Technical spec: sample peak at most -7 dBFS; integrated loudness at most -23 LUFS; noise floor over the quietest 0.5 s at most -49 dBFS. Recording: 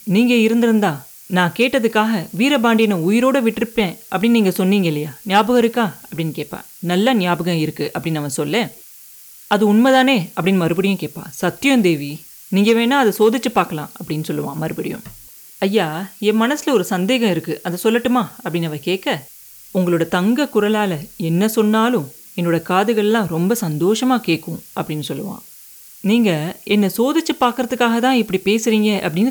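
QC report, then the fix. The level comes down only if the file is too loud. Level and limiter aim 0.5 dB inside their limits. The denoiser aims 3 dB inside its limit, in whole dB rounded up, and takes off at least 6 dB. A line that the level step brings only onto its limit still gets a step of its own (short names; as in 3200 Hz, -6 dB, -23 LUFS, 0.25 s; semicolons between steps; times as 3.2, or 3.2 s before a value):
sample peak -3.5 dBFS: fail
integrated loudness -17.5 LUFS: fail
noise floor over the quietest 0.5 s -41 dBFS: fail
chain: denoiser 6 dB, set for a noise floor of -41 dBFS; gain -6 dB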